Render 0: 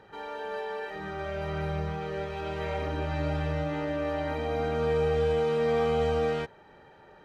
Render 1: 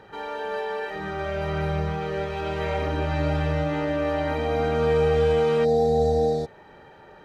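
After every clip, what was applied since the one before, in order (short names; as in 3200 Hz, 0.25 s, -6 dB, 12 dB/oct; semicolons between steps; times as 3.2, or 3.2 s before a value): spectral repair 5.67–6.61, 910–3500 Hz after; gain +5.5 dB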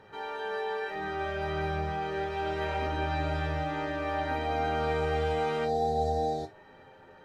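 resonator bank F2 minor, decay 0.2 s; gain +4.5 dB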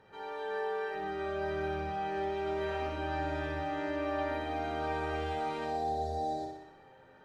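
flutter echo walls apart 10.5 m, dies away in 0.8 s; gain -6.5 dB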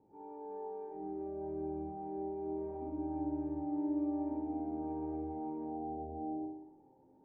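vocal tract filter u; gain +5.5 dB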